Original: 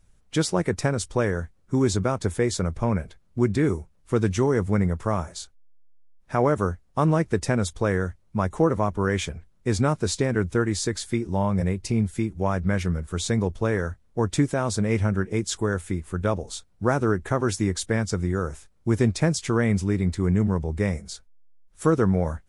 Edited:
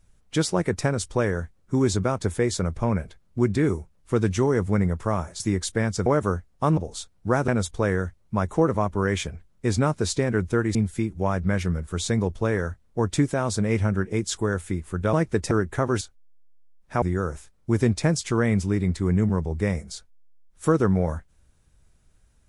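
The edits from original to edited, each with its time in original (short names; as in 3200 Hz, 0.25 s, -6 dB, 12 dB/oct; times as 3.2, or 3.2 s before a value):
5.4–6.41 swap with 17.54–18.2
7.12–7.5 swap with 16.33–17.04
10.77–11.95 cut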